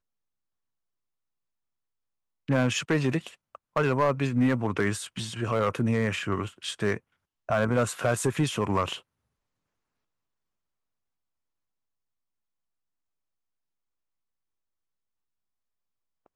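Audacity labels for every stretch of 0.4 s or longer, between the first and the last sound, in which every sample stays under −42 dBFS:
6.980000	7.490000	silence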